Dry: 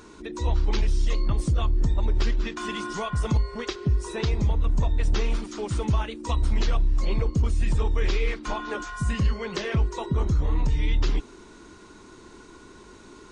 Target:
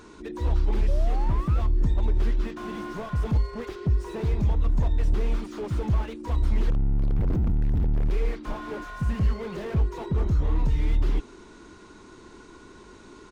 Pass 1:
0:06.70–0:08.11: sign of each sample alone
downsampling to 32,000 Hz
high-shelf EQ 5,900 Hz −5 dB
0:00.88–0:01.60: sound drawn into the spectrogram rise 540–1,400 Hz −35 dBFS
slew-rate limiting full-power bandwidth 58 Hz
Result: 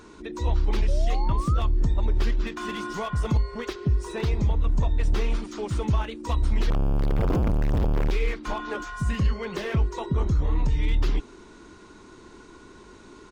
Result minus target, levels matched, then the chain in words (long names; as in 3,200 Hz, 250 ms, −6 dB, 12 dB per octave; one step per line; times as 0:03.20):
slew-rate limiting: distortion −7 dB
0:06.70–0:08.11: sign of each sample alone
downsampling to 32,000 Hz
high-shelf EQ 5,900 Hz −5 dB
0:00.88–0:01.60: sound drawn into the spectrogram rise 540–1,400 Hz −35 dBFS
slew-rate limiting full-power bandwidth 16.5 Hz